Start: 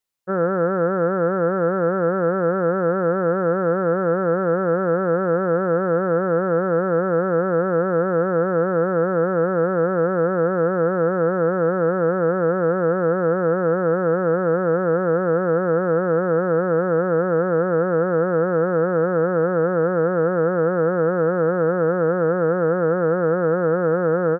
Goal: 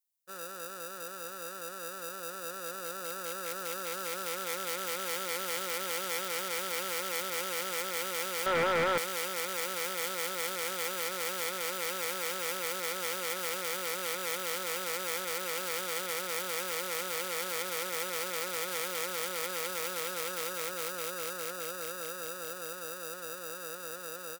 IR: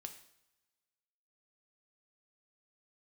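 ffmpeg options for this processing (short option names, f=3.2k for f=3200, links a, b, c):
-filter_complex "[0:a]bandreject=f=730:w=18,asplit=2[a][b];[b]acrusher=samples=41:mix=1:aa=0.000001,volume=-11dB[c];[a][c]amix=inputs=2:normalize=0,dynaudnorm=f=430:g=17:m=16.5dB,aeval=exprs='0.398*(abs(mod(val(0)/0.398+3,4)-2)-1)':c=same,aderivative,asettb=1/sr,asplit=3[d][e][f];[d]atrim=end=8.464[g];[e]atrim=start=8.46:end=8.98,asetpts=PTS-STARTPTS,afade=t=in:d=0.004:c=qsin,afade=t=out:st=0.516:d=0.004:c=qsin,asplit=2[h][i];[i]highpass=f=720:p=1,volume=24dB,asoftclip=type=tanh:threshold=-9.5dB[j];[h][j]amix=inputs=2:normalize=0,lowpass=f=1.1k:p=1,volume=-6dB[k];[f]atrim=start=8.976[l];[g][k]acrossfade=d=0.004:c1=hsin:c2=qsin[m];[m][l]acrossfade=d=0.004:c1=qsin:c2=hsin,volume=-4dB"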